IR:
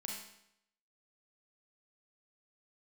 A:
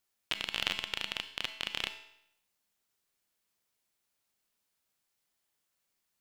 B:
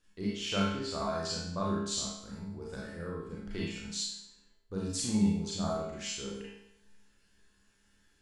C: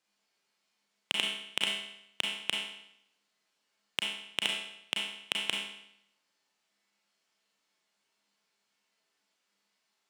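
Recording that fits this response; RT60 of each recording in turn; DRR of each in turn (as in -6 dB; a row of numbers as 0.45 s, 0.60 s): C; 0.75 s, 0.75 s, 0.75 s; 8.5 dB, -6.5 dB, -1.0 dB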